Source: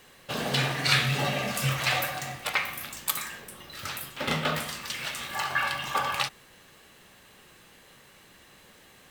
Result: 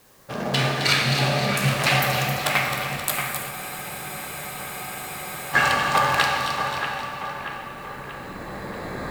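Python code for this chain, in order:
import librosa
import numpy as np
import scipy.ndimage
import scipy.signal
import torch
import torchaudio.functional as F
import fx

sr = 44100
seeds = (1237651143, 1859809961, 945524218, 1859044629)

p1 = fx.wiener(x, sr, points=15)
p2 = fx.recorder_agc(p1, sr, target_db=-8.0, rise_db_per_s=7.8, max_gain_db=30)
p3 = fx.echo_split(p2, sr, split_hz=2900.0, low_ms=632, high_ms=264, feedback_pct=52, wet_db=-6.5)
p4 = fx.quant_dither(p3, sr, seeds[0], bits=8, dither='triangular')
p5 = p3 + (p4 * 10.0 ** (-6.0 / 20.0))
p6 = fx.rev_plate(p5, sr, seeds[1], rt60_s=2.5, hf_ratio=0.95, predelay_ms=0, drr_db=1.0)
p7 = fx.spec_freeze(p6, sr, seeds[2], at_s=3.52, hold_s=2.01)
y = p7 * 10.0 ** (-4.0 / 20.0)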